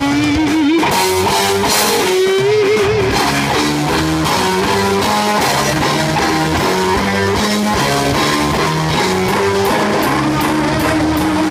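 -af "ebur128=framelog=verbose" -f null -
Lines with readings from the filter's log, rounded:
Integrated loudness:
  I:         -13.5 LUFS
  Threshold: -23.5 LUFS
Loudness range:
  LRA:         1.4 LU
  Threshold: -33.6 LUFS
  LRA low:   -14.0 LUFS
  LRA high:  -12.6 LUFS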